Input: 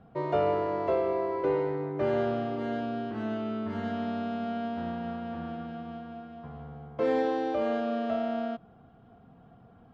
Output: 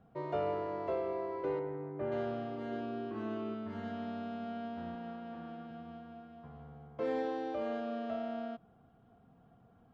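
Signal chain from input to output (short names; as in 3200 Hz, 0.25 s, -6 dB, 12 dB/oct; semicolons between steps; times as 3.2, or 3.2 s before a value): 1.59–2.12 air absorption 420 m; 2.71–3.53 small resonant body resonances 360/1100/2500 Hz, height 9 dB -> 12 dB; 4.95–5.71 HPF 150 Hz 12 dB/oct; gain -8 dB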